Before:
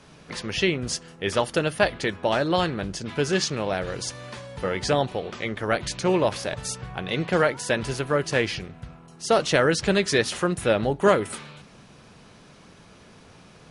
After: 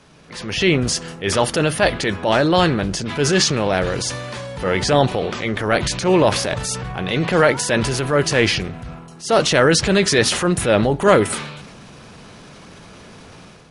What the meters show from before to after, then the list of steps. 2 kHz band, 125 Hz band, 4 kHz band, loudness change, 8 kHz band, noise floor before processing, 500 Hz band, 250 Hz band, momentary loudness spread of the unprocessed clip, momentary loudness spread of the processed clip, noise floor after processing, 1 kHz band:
+6.5 dB, +8.5 dB, +8.0 dB, +7.0 dB, +9.5 dB, -51 dBFS, +6.0 dB, +7.5 dB, 13 LU, 11 LU, -42 dBFS, +6.5 dB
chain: transient shaper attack -6 dB, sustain +5 dB; level rider gain up to 8 dB; trim +1 dB

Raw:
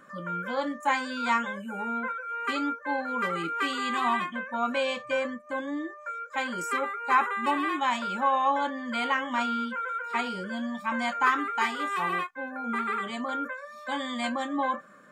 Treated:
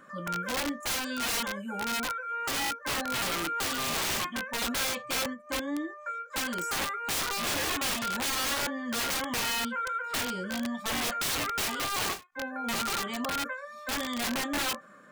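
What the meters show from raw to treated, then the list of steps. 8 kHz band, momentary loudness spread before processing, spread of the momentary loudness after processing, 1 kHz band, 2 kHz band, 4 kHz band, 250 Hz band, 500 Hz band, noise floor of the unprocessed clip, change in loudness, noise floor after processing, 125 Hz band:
+15.5 dB, 9 LU, 6 LU, -6.5 dB, -2.0 dB, +7.0 dB, -2.5 dB, -4.0 dB, -47 dBFS, -1.5 dB, -49 dBFS, no reading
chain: integer overflow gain 25 dB; endings held to a fixed fall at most 230 dB/s

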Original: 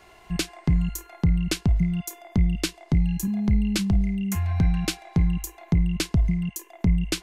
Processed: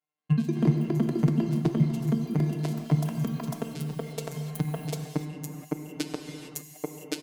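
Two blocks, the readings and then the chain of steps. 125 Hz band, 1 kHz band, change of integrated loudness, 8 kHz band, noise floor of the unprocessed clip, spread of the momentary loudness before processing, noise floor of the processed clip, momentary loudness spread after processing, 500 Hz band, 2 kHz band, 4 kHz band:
-3.5 dB, 0.0 dB, -4.0 dB, -8.5 dB, -52 dBFS, 6 LU, -50 dBFS, 13 LU, +4.0 dB, -8.0 dB, -10.0 dB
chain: high-pass 100 Hz 24 dB/octave; gate -43 dBFS, range -42 dB; peak limiter -21.5 dBFS, peak gain reduction 10.5 dB; feedback delay 123 ms, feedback 50%, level -19.5 dB; compression 1.5:1, threshold -46 dBFS, peak gain reduction 7.5 dB; high-pass sweep 150 Hz -> 380 Hz, 3.76–6.47 s; robot voice 151 Hz; transient shaper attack +10 dB, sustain -12 dB; gated-style reverb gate 480 ms flat, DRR 4.5 dB; ever faster or slower copies 176 ms, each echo +7 st, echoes 2

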